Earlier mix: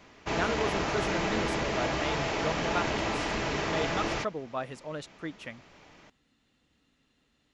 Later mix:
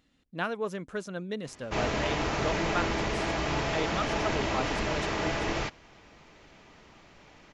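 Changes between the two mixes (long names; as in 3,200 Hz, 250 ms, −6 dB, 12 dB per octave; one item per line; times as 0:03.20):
background: entry +1.45 s
master: add low-shelf EQ 68 Hz +6.5 dB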